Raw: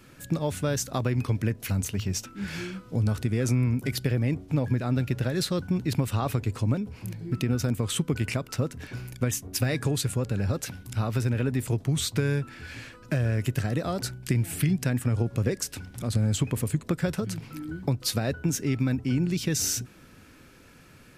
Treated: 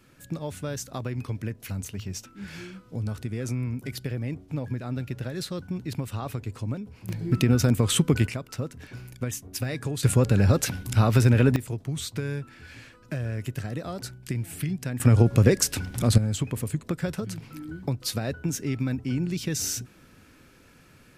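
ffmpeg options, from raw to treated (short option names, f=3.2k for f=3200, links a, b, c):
-af "asetnsamples=n=441:p=0,asendcmd='7.09 volume volume 5.5dB;8.27 volume volume -4dB;10.03 volume volume 7.5dB;11.56 volume volume -5dB;15 volume volume 8dB;16.18 volume volume -2dB',volume=-5.5dB"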